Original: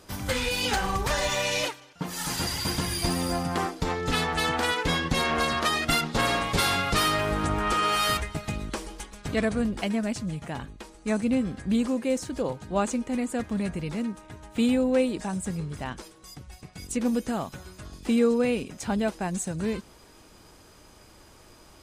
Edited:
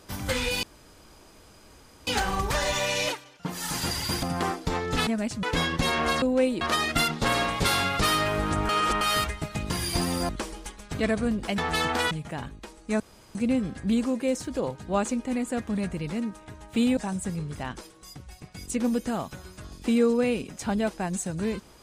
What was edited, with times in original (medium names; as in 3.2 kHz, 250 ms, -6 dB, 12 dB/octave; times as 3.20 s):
0.63 s: insert room tone 1.44 s
2.79–3.38 s: move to 8.63 s
4.22–4.75 s: swap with 9.92–10.28 s
7.62–7.94 s: reverse
11.17 s: insert room tone 0.35 s
14.79–15.18 s: move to 5.54 s